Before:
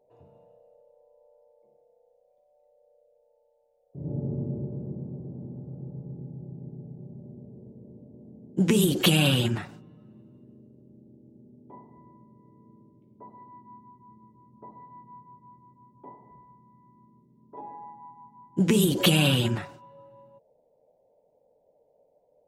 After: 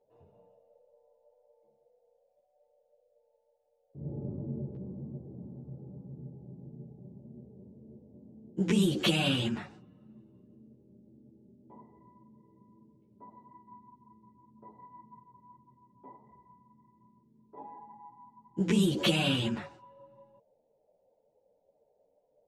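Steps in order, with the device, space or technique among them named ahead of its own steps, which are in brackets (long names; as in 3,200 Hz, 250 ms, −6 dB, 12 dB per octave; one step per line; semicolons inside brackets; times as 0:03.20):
0:04.28–0:04.82: noise gate with hold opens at −28 dBFS
string-machine ensemble chorus (string-ensemble chorus; low-pass filter 7,200 Hz 12 dB per octave)
level −2 dB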